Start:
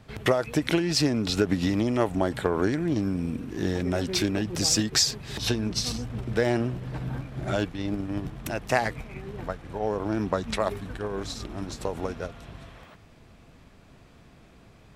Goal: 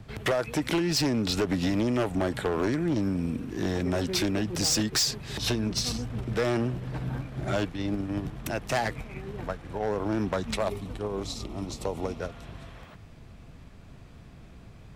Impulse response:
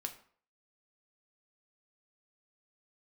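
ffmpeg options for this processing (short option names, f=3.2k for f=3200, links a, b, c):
-filter_complex "[0:a]asettb=1/sr,asplit=3[a][b][c];[a]atrim=end=10.544[d];[b]atrim=start=10.54:end=12.2,asetpts=PTS-STARTPTS,afade=t=in:d=0.004:c=qsin,afade=t=out:st=1.656:d=0.004:c=qsin,equalizer=f=1.6k:w=4.3:g=-14.5[e];[c]atrim=start=12.196[f];[d][e]acrossfade=d=0.004:c1=hsin:c2=qsin[g];[g][f]acrossfade=d=0.004:c1=qsin:c2=hsin,acrossover=split=180|1200|2000[h][i][j][k];[h]acompressor=mode=upward:threshold=-40dB:ratio=2.5[l];[l][i][j][k]amix=inputs=4:normalize=0,asoftclip=type=hard:threshold=-21dB"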